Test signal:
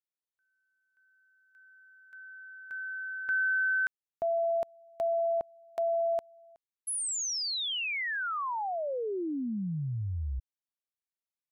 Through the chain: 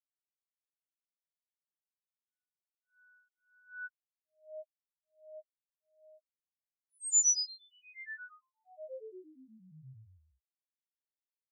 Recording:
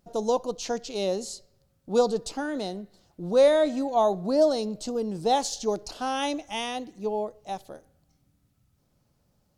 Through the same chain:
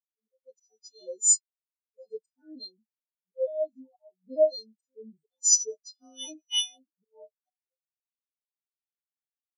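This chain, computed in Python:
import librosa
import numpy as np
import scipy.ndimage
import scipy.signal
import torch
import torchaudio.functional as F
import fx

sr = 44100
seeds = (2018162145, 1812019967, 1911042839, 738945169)

y = fx.freq_snap(x, sr, grid_st=3)
y = fx.rider(y, sr, range_db=4, speed_s=0.5)
y = fx.highpass(y, sr, hz=100.0, slope=6)
y = fx.high_shelf(y, sr, hz=2500.0, db=7.0)
y = fx.auto_swell(y, sr, attack_ms=296.0)
y = fx.rotary(y, sr, hz=1.2)
y = fx.spectral_expand(y, sr, expansion=4.0)
y = y * librosa.db_to_amplitude(1.5)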